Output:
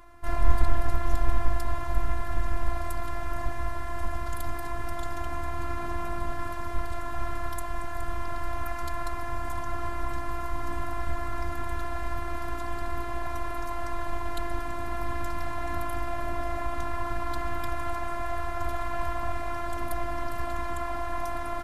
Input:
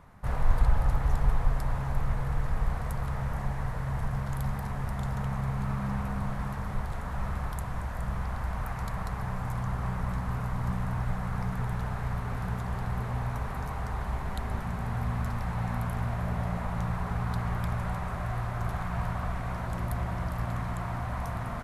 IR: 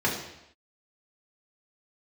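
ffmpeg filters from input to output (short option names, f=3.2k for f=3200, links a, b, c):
-af "afftfilt=real='hypot(re,im)*cos(PI*b)':imag='0':win_size=512:overlap=0.75,volume=7.5dB"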